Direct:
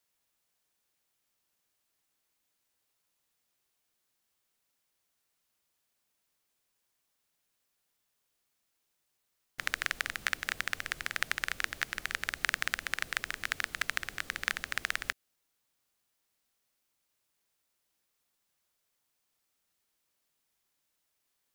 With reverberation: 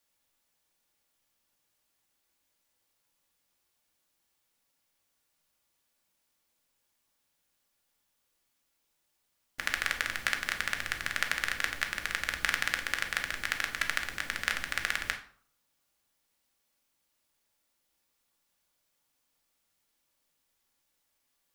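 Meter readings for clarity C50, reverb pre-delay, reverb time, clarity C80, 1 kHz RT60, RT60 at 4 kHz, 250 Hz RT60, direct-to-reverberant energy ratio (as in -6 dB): 10.5 dB, 3 ms, 0.55 s, 14.5 dB, 0.55 s, 0.35 s, 0.65 s, 3.0 dB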